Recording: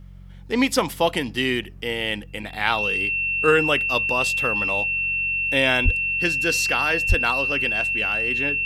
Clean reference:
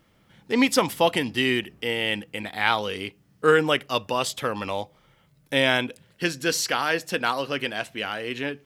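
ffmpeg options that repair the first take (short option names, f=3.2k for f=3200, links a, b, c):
-filter_complex "[0:a]bandreject=f=45.9:t=h:w=4,bandreject=f=91.8:t=h:w=4,bandreject=f=137.7:t=h:w=4,bandreject=f=183.6:t=h:w=4,bandreject=f=2.7k:w=30,asplit=3[a][b][c];[a]afade=t=out:st=5.84:d=0.02[d];[b]highpass=f=140:w=0.5412,highpass=f=140:w=1.3066,afade=t=in:st=5.84:d=0.02,afade=t=out:st=5.96:d=0.02[e];[c]afade=t=in:st=5.96:d=0.02[f];[d][e][f]amix=inputs=3:normalize=0,asplit=3[g][h][i];[g]afade=t=out:st=7.08:d=0.02[j];[h]highpass=f=140:w=0.5412,highpass=f=140:w=1.3066,afade=t=in:st=7.08:d=0.02,afade=t=out:st=7.2:d=0.02[k];[i]afade=t=in:st=7.2:d=0.02[l];[j][k][l]amix=inputs=3:normalize=0"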